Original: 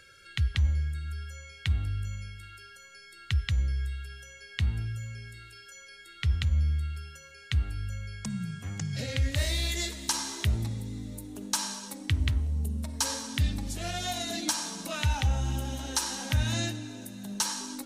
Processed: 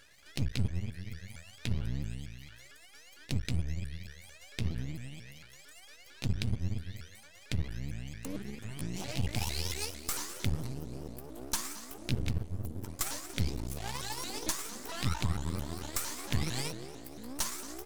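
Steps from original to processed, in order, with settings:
pitch shifter swept by a sawtooth +7.5 semitones, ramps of 226 ms
half-wave rectification

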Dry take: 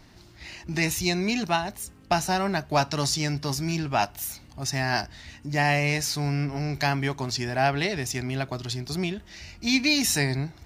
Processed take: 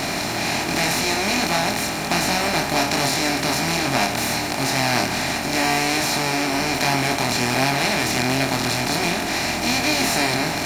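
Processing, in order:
compressor on every frequency bin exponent 0.2
chorus effect 1.3 Hz, depth 2.7 ms
pitch-shifted copies added +5 semitones −13 dB
level −2 dB

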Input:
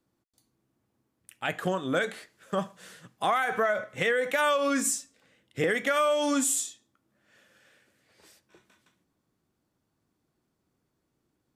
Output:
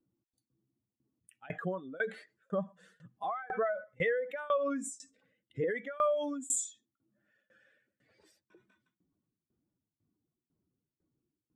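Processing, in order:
expanding power law on the bin magnitudes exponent 1.9
shaped tremolo saw down 2 Hz, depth 95%
level −2.5 dB

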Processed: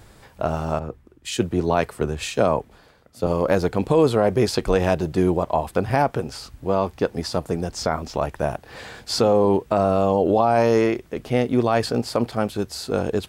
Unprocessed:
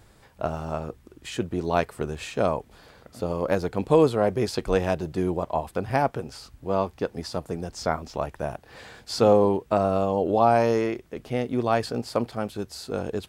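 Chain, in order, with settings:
brickwall limiter −14.5 dBFS, peak gain reduction 8.5 dB
0:00.79–0:03.27: multiband upward and downward expander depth 70%
level +6.5 dB

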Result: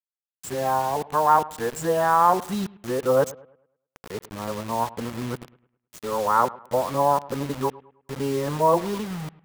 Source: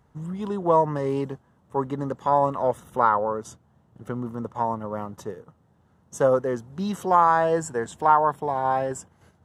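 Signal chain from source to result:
played backwards from end to start
bit reduction 6 bits
bucket-brigade delay 105 ms, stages 2,048, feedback 36%, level −20 dB

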